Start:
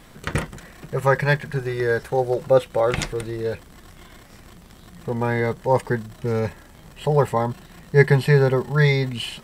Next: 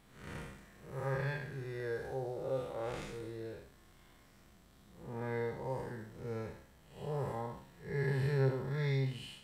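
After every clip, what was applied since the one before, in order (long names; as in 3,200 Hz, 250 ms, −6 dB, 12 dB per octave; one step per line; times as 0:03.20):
spectrum smeared in time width 178 ms
tuned comb filter 67 Hz, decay 0.46 s, harmonics all, mix 70%
level −8 dB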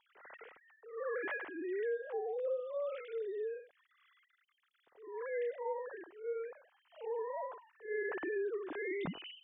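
three sine waves on the formant tracks
downward compressor 10 to 1, threshold −35 dBFS, peak gain reduction 11 dB
level +1.5 dB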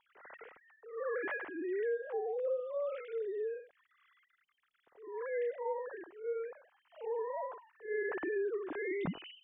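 bass and treble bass +3 dB, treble −14 dB
level +1.5 dB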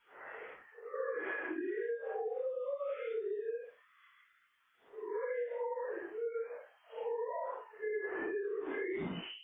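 random phases in long frames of 200 ms
downward compressor 10 to 1, threshold −40 dBFS, peak gain reduction 11.5 dB
level +5.5 dB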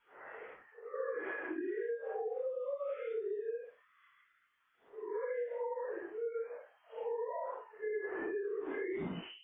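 high-shelf EQ 2,600 Hz −8 dB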